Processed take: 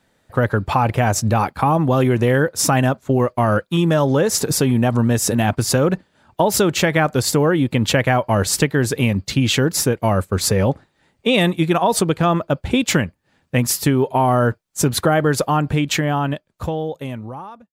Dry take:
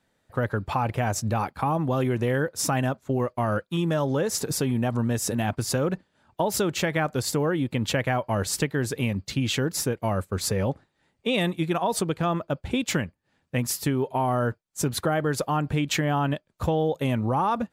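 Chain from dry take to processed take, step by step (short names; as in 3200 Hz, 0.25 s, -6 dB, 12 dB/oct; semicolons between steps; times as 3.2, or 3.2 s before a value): ending faded out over 2.45 s; gain +8.5 dB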